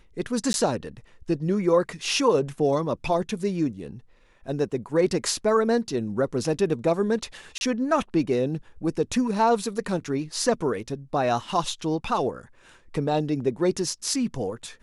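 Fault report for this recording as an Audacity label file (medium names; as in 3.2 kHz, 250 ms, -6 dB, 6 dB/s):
0.530000	0.540000	dropout 11 ms
7.580000	7.610000	dropout 31 ms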